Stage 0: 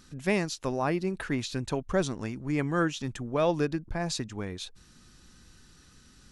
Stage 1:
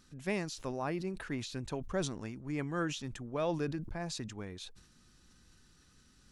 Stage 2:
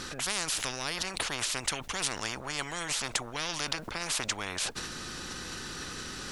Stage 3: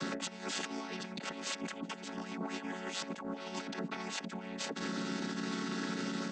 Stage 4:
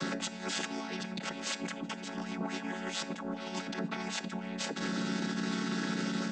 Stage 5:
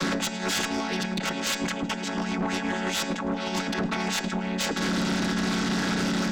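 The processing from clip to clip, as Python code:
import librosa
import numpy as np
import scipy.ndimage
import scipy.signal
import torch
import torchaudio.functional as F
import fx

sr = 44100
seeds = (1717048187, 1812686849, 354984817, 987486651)

y1 = fx.sustainer(x, sr, db_per_s=79.0)
y1 = F.gain(torch.from_numpy(y1), -8.0).numpy()
y2 = fx.high_shelf(y1, sr, hz=5500.0, db=-8.0)
y2 = fx.spectral_comp(y2, sr, ratio=10.0)
y2 = F.gain(torch.from_numpy(y2), 8.5).numpy()
y3 = fx.chord_vocoder(y2, sr, chord='minor triad', root=54)
y3 = fx.over_compress(y3, sr, threshold_db=-39.0, ratio=-0.5)
y4 = fx.room_shoebox(y3, sr, seeds[0], volume_m3=2400.0, walls='furnished', distance_m=0.74)
y4 = F.gain(torch.from_numpy(y4), 2.5).numpy()
y5 = y4 + 10.0 ** (-20.0 / 20.0) * np.pad(y4, (int(107 * sr / 1000.0), 0))[:len(y4)]
y5 = fx.fold_sine(y5, sr, drive_db=7, ceiling_db=-22.0)
y5 = fx.cheby_harmonics(y5, sr, harmonics=(2, 4), levels_db=(-12, -25), full_scale_db=-21.0)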